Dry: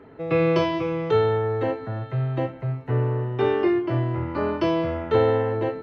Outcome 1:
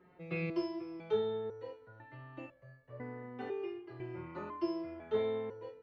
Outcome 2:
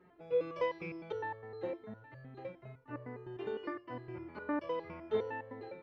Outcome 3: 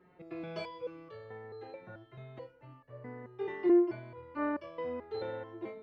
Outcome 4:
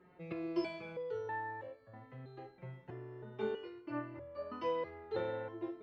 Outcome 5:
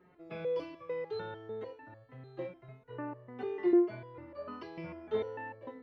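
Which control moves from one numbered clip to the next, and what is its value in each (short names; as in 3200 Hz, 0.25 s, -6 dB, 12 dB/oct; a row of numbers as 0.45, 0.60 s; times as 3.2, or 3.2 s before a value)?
stepped resonator, rate: 2, 9.8, 4.6, 3.1, 6.7 Hz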